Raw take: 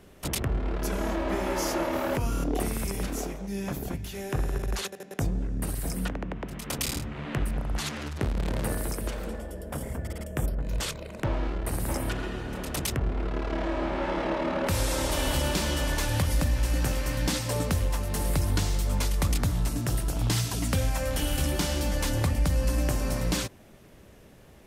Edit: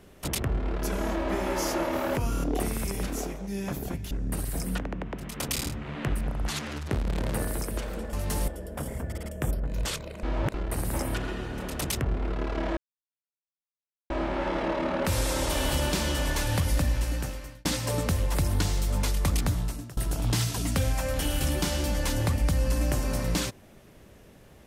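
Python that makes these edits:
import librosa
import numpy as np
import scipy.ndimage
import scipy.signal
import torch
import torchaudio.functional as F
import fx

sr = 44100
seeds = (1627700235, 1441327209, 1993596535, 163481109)

y = fx.edit(x, sr, fx.cut(start_s=4.11, length_s=1.3),
    fx.reverse_span(start_s=11.18, length_s=0.31),
    fx.insert_silence(at_s=13.72, length_s=1.33),
    fx.fade_out_span(start_s=16.51, length_s=0.76),
    fx.move(start_s=17.97, length_s=0.35, to_s=9.43),
    fx.fade_out_to(start_s=19.48, length_s=0.46, floor_db=-24.0), tone=tone)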